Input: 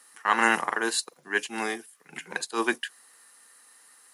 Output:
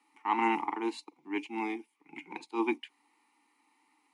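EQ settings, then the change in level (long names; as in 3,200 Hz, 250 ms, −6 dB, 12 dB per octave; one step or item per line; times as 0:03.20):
formant filter u
+8.5 dB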